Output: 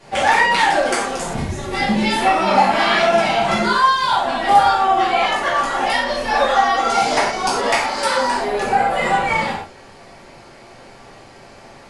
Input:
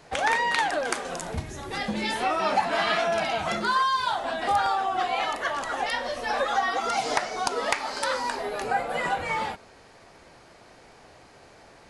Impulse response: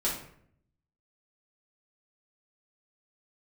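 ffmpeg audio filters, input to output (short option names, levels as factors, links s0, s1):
-filter_complex "[1:a]atrim=start_sample=2205,atrim=end_sample=3528,asetrate=26019,aresample=44100[s0];[0:a][s0]afir=irnorm=-1:irlink=0,volume=0.841"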